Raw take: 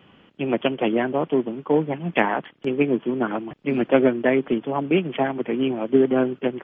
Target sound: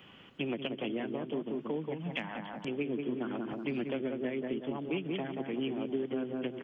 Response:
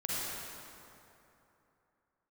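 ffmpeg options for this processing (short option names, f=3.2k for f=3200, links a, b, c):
-filter_complex "[0:a]asplit=2[a][b];[b]adelay=181,lowpass=f=1.1k:p=1,volume=-4.5dB,asplit=2[c][d];[d]adelay=181,lowpass=f=1.1k:p=1,volume=0.34,asplit=2[e][f];[f]adelay=181,lowpass=f=1.1k:p=1,volume=0.34,asplit=2[g][h];[h]adelay=181,lowpass=f=1.1k:p=1,volume=0.34[i];[a][c][e][g][i]amix=inputs=5:normalize=0,acompressor=threshold=-28dB:ratio=3,asettb=1/sr,asplit=3[j][k][l];[j]atrim=end=1.944[m];[k]atrim=start=1.94:end=2.68,asetpts=PTS-STARTPTS,afade=t=in:d=0.004:c=qsin,afade=t=out:st=0.736:d=0.004:c=qsin,equalizer=f=400:w=2.9:g=-12[n];[l]atrim=start=2.676[o];[m][n]acrossfade=d=0.004:c1=hsin:c2=qsin[p];[p][o]acrossfade=d=0.004:c1=qsin:c2=hsin,acrossover=split=460|3000[q][r][s];[r]acompressor=threshold=-42dB:ratio=2.5[t];[q][t][s]amix=inputs=3:normalize=0,highshelf=f=2.3k:g=11,volume=-5dB"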